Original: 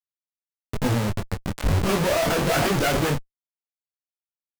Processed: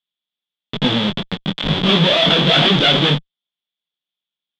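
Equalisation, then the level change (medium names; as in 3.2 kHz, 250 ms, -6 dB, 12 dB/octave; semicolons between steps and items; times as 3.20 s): resonant low-pass 3.4 kHz, resonance Q 12; resonant low shelf 120 Hz -10 dB, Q 3; +3.5 dB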